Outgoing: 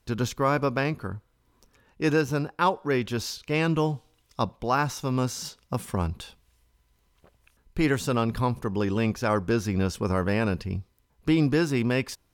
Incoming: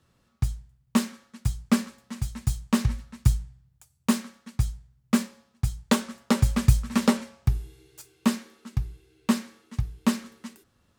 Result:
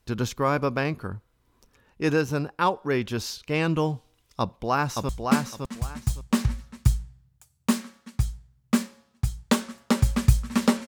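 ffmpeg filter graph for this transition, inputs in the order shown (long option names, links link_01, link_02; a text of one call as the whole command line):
ffmpeg -i cue0.wav -i cue1.wav -filter_complex "[0:a]apad=whole_dur=10.87,atrim=end=10.87,atrim=end=5.092[link_01];[1:a]atrim=start=1.488:end=7.27[link_02];[link_01][link_02]acrossfade=duration=0.004:curve1=hsin:curve2=hsin,asplit=2[link_03][link_04];[link_04]afade=type=in:start_time=4.4:duration=0.01,afade=type=out:start_time=5.09:duration=0.01,aecho=0:1:560|1120|1680:0.630957|0.126191|0.0252383[link_05];[link_03][link_05]amix=inputs=2:normalize=0" out.wav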